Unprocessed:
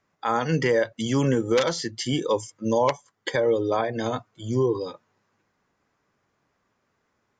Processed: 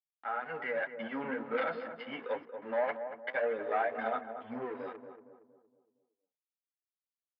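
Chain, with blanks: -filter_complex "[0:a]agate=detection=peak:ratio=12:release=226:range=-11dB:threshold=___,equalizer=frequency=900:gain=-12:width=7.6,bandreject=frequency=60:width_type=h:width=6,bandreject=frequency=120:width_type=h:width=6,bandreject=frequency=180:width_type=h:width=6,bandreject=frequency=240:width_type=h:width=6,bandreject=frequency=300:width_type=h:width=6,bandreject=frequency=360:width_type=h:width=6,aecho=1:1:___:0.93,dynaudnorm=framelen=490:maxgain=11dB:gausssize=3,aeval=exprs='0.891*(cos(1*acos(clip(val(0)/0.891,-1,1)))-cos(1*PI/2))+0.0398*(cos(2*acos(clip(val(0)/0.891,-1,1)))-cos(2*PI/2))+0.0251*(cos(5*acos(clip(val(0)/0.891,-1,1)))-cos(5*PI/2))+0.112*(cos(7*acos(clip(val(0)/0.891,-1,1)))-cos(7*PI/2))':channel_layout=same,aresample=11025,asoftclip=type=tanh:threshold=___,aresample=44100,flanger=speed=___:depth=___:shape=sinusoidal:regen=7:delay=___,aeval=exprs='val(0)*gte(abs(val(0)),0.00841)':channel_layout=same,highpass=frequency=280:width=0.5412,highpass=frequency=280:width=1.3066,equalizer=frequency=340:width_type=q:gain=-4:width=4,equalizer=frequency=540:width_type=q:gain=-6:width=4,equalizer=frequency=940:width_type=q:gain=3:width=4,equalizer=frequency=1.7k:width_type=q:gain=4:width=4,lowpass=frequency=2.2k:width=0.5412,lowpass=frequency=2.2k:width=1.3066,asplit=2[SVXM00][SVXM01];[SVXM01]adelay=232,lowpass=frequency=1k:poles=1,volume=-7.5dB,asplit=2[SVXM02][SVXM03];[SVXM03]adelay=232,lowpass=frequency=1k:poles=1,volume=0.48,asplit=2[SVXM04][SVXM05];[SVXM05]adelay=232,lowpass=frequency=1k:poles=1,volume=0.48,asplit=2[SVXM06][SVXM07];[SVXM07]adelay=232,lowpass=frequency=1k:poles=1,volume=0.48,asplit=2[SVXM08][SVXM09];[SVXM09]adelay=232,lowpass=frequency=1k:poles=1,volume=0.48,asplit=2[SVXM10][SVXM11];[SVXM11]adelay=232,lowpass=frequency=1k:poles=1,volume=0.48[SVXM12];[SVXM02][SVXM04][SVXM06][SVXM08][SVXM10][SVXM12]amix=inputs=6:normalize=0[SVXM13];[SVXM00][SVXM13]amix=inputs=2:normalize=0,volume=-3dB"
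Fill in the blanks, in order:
-44dB, 1.4, -18.5dB, 2, 4.1, 8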